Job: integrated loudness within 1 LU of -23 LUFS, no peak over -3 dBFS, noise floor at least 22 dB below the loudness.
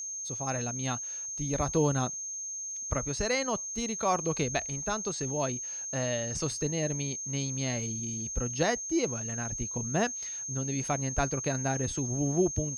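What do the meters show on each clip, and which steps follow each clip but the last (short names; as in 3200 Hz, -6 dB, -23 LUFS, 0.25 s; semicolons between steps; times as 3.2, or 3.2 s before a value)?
steady tone 6400 Hz; tone level -35 dBFS; loudness -31.0 LUFS; peak -14.0 dBFS; loudness target -23.0 LUFS
-> notch 6400 Hz, Q 30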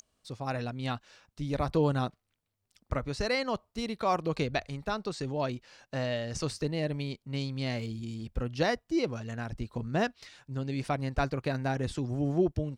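steady tone none; loudness -33.0 LUFS; peak -14.5 dBFS; loudness target -23.0 LUFS
-> gain +10 dB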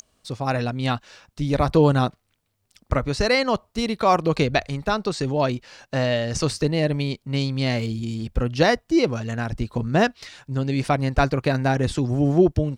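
loudness -23.0 LUFS; peak -4.5 dBFS; noise floor -71 dBFS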